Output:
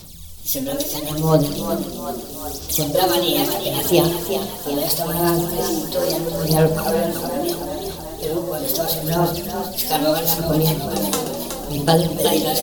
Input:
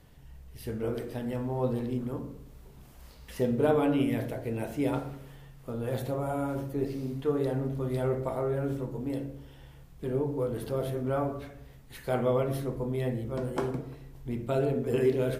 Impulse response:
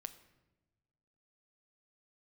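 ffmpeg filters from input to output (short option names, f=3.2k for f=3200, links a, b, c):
-filter_complex "[0:a]aphaser=in_gain=1:out_gain=1:delay=4.8:decay=0.67:speed=0.62:type=sinusoidal,aexciter=amount=7:drive=7.4:freq=2.6k,asetrate=53802,aresample=44100,asplit=8[a][b][c][d][e][f][g][h];[b]adelay=373,afreqshift=42,volume=-8dB[i];[c]adelay=746,afreqshift=84,volume=-12.6dB[j];[d]adelay=1119,afreqshift=126,volume=-17.2dB[k];[e]adelay=1492,afreqshift=168,volume=-21.7dB[l];[f]adelay=1865,afreqshift=210,volume=-26.3dB[m];[g]adelay=2238,afreqshift=252,volume=-30.9dB[n];[h]adelay=2611,afreqshift=294,volume=-35.5dB[o];[a][i][j][k][l][m][n][o]amix=inputs=8:normalize=0,asplit=2[p][q];[1:a]atrim=start_sample=2205[r];[q][r]afir=irnorm=-1:irlink=0,volume=9dB[s];[p][s]amix=inputs=2:normalize=0,volume=-4dB"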